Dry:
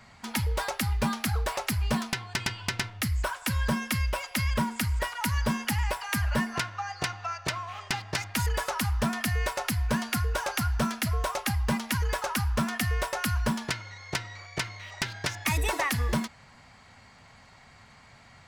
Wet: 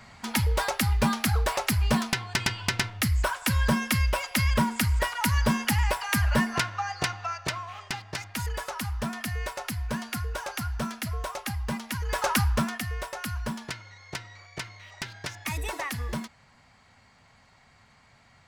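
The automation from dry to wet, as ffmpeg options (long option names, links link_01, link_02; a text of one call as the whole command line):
ffmpeg -i in.wav -af "volume=13.5dB,afade=type=out:start_time=6.82:duration=1.21:silence=0.421697,afade=type=in:start_time=12.06:duration=0.22:silence=0.316228,afade=type=out:start_time=12.28:duration=0.55:silence=0.281838" out.wav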